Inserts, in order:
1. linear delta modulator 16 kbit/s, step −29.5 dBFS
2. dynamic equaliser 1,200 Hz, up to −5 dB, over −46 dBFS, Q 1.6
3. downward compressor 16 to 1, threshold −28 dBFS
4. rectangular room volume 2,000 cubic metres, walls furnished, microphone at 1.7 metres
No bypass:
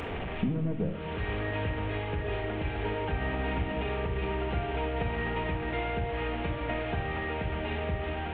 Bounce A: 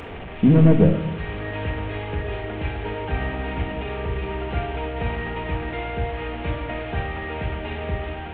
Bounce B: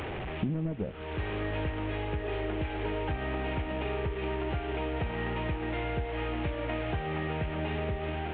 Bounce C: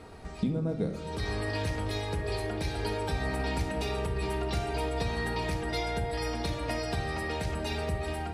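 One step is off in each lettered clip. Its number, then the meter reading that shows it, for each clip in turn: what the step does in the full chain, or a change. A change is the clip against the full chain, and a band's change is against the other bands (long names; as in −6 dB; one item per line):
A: 3, average gain reduction 4.0 dB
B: 4, echo-to-direct ratio −4.5 dB to none audible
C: 1, 4 kHz band +4.5 dB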